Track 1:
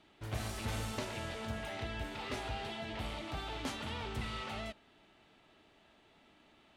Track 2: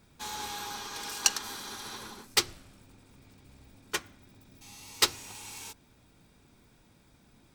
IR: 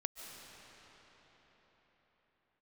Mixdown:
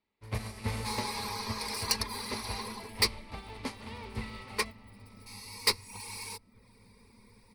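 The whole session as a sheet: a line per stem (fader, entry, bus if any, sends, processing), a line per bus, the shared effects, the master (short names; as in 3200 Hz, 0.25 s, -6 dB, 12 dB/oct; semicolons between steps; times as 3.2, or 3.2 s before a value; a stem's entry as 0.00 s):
+3.0 dB, 0.00 s, send -7 dB, upward expander 2.5:1, over -51 dBFS
+1.0 dB, 0.65 s, no send, reverb removal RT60 0.55 s; ripple EQ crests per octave 0.91, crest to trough 6 dB; soft clip -22 dBFS, distortion -6 dB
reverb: on, pre-delay 0.105 s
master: ripple EQ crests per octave 0.9, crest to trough 9 dB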